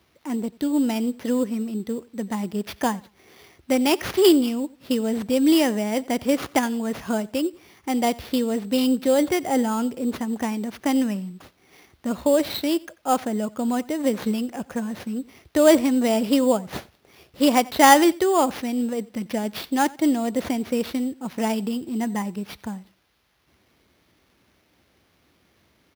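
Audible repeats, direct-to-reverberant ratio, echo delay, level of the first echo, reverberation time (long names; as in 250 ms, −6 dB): 1, no reverb audible, 90 ms, −23.0 dB, no reverb audible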